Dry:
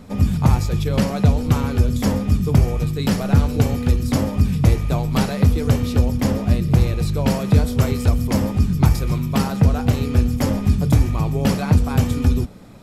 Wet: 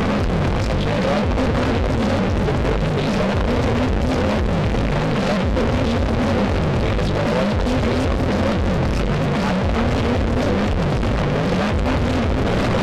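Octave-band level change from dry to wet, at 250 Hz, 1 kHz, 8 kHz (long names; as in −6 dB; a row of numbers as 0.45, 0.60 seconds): +0.5, +6.0, −4.5 decibels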